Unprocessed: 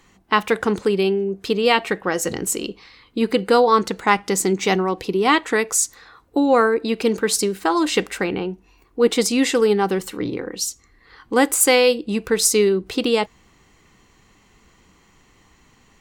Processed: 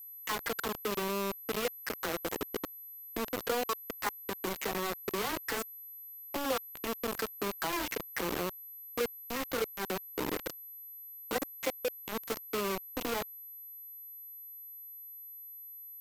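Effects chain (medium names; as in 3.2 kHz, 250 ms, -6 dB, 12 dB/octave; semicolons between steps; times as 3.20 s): delay that grows with frequency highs early, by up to 200 ms; high-pass 120 Hz 12 dB/octave; treble shelf 5.8 kHz -8 dB; level held to a coarse grid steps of 14 dB; three-band isolator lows -15 dB, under 240 Hz, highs -18 dB, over 2.2 kHz; compression 6:1, threshold -29 dBFS, peak gain reduction 15.5 dB; bit crusher 5-bit; whistle 12 kHz -42 dBFS; trim -3 dB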